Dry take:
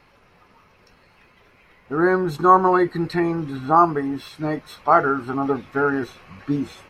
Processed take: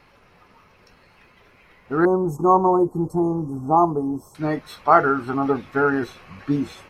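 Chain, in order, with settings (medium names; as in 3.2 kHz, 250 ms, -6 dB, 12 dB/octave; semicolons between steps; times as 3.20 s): 2.05–4.35 s: elliptic band-stop 970–6500 Hz, stop band 40 dB; trim +1 dB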